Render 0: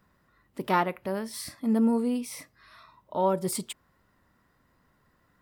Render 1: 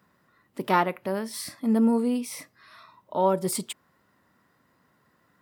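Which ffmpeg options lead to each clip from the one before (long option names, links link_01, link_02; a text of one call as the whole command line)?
ffmpeg -i in.wav -af "highpass=130,volume=2.5dB" out.wav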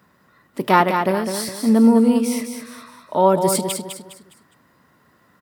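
ffmpeg -i in.wav -af "aecho=1:1:205|410|615|820:0.473|0.166|0.058|0.0203,volume=7.5dB" out.wav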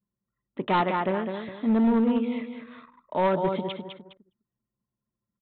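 ffmpeg -i in.wav -af "anlmdn=0.398,aresample=8000,asoftclip=type=hard:threshold=-11.5dB,aresample=44100,volume=-6.5dB" out.wav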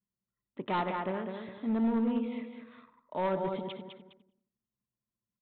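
ffmpeg -i in.wav -filter_complex "[0:a]asplit=2[link_01][link_02];[link_02]adelay=89,lowpass=frequency=1400:poles=1,volume=-11dB,asplit=2[link_03][link_04];[link_04]adelay=89,lowpass=frequency=1400:poles=1,volume=0.43,asplit=2[link_05][link_06];[link_06]adelay=89,lowpass=frequency=1400:poles=1,volume=0.43,asplit=2[link_07][link_08];[link_08]adelay=89,lowpass=frequency=1400:poles=1,volume=0.43[link_09];[link_01][link_03][link_05][link_07][link_09]amix=inputs=5:normalize=0,volume=-8dB" out.wav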